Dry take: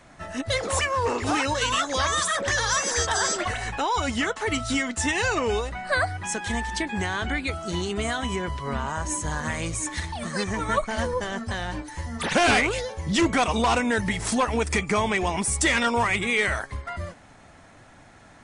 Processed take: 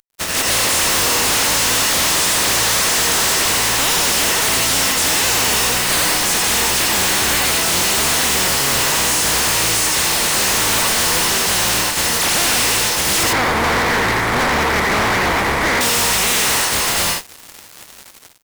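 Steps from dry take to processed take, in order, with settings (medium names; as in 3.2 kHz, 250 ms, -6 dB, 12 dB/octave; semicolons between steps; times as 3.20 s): spectral contrast reduction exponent 0.17; 13.23–15.81 s: steep low-pass 2.3 kHz 96 dB/octave; reverberation, pre-delay 74 ms, DRR 3 dB; level rider gain up to 5 dB; fuzz box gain 34 dB, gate -40 dBFS; trim -1.5 dB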